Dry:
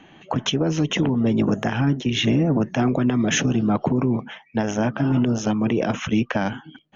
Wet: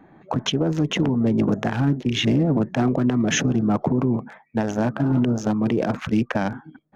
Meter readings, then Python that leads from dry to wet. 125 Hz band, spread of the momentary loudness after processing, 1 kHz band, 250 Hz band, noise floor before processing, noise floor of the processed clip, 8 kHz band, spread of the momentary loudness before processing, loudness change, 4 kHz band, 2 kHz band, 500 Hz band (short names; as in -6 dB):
0.0 dB, 6 LU, -1.0 dB, 0.0 dB, -51 dBFS, -54 dBFS, n/a, 6 LU, -0.5 dB, -1.5 dB, -1.5 dB, -0.5 dB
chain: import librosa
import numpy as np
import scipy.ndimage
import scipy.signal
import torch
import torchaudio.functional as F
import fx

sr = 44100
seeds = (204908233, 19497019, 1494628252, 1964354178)

y = fx.wiener(x, sr, points=15)